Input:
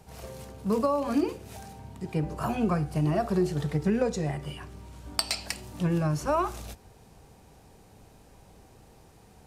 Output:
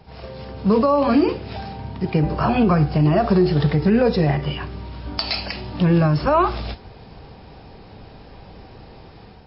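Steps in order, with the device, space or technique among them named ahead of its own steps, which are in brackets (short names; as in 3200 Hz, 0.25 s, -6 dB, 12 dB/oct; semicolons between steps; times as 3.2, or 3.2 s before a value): low-bitrate web radio (AGC gain up to 7 dB; limiter -14 dBFS, peak gain reduction 9.5 dB; gain +6 dB; MP3 24 kbps 12000 Hz)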